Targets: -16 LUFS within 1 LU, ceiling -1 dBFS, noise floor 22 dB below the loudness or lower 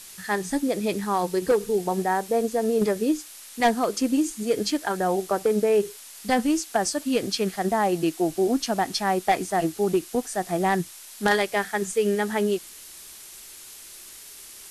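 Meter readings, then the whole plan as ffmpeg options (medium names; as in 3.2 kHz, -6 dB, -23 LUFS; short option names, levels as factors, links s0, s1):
noise floor -44 dBFS; noise floor target -47 dBFS; loudness -24.5 LUFS; peak level -12.5 dBFS; loudness target -16.0 LUFS
-> -af "afftdn=nr=6:nf=-44"
-af "volume=2.66"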